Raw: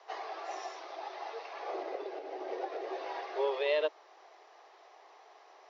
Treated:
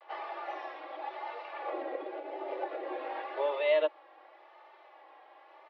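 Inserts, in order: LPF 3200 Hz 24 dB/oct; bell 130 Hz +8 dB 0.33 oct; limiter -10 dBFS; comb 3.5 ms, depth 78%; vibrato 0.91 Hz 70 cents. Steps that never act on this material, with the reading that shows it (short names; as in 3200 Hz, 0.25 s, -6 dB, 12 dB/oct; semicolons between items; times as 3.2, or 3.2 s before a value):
bell 130 Hz: input band starts at 270 Hz; limiter -10 dBFS: input peak -19.0 dBFS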